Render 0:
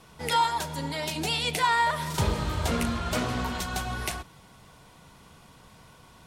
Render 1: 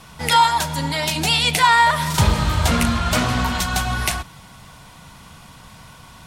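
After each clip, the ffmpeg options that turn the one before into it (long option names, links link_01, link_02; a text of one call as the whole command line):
ffmpeg -i in.wav -af "acontrast=74,equalizer=frequency=410:width_type=o:width=1:gain=-8.5,volume=4dB" out.wav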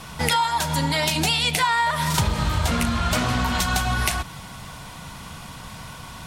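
ffmpeg -i in.wav -af "acompressor=threshold=-24dB:ratio=6,volume=5dB" out.wav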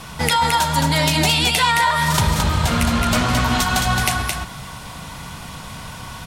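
ffmpeg -i in.wav -af "aecho=1:1:218:0.631,volume=3dB" out.wav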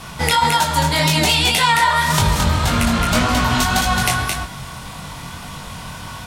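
ffmpeg -i in.wav -af "flanger=delay=20:depth=3.8:speed=1.8,volume=4.5dB" out.wav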